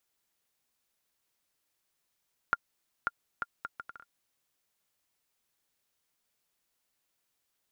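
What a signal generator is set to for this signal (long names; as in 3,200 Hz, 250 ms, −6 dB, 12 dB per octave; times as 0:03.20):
bouncing ball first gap 0.54 s, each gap 0.65, 1,400 Hz, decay 35 ms −13 dBFS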